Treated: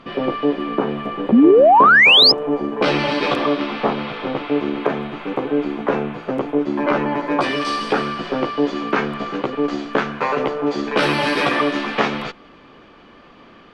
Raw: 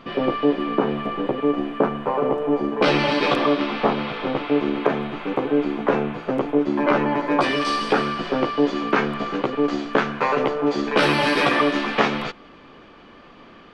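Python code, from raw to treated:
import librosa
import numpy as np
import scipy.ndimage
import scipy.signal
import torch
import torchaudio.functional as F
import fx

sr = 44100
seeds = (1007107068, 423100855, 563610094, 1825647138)

y = fx.spec_paint(x, sr, seeds[0], shape='rise', start_s=1.32, length_s=1.0, low_hz=210.0, high_hz=5300.0, level_db=-10.0)
y = fx.cheby_harmonics(y, sr, harmonics=(5,), levels_db=(-39,), full_scale_db=-1.0)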